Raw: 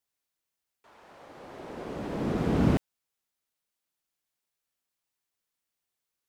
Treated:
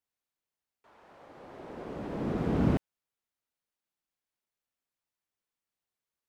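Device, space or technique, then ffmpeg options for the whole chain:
behind a face mask: -af "highshelf=f=3.1k:g=-7,volume=-2.5dB"

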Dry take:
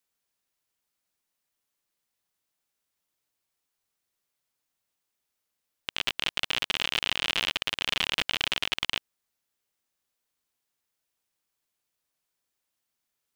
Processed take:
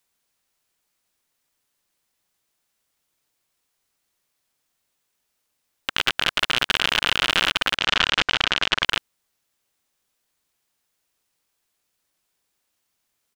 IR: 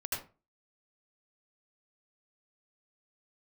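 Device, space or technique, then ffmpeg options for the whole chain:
octave pedal: -filter_complex "[0:a]asplit=2[a][b];[b]asetrate=22050,aresample=44100,atempo=2,volume=-6dB[c];[a][c]amix=inputs=2:normalize=0,asplit=3[d][e][f];[d]afade=t=out:st=7.76:d=0.02[g];[e]lowpass=f=7.1k:w=0.5412,lowpass=f=7.1k:w=1.3066,afade=t=in:st=7.76:d=0.02,afade=t=out:st=8.84:d=0.02[h];[f]afade=t=in:st=8.84:d=0.02[i];[g][h][i]amix=inputs=3:normalize=0,volume=6.5dB"

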